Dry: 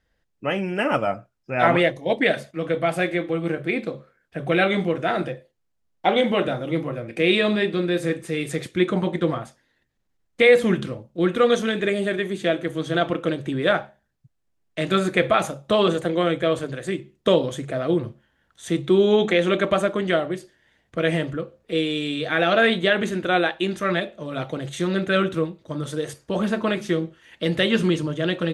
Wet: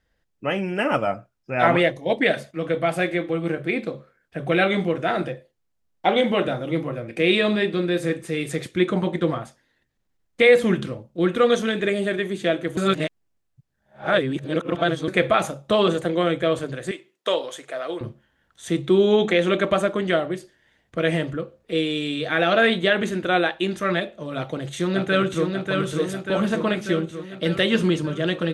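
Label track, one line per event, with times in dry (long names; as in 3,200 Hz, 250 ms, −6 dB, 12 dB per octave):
12.770000	15.080000	reverse
16.910000	18.010000	high-pass filter 620 Hz
24.360000	25.480000	delay throw 590 ms, feedback 65%, level −4 dB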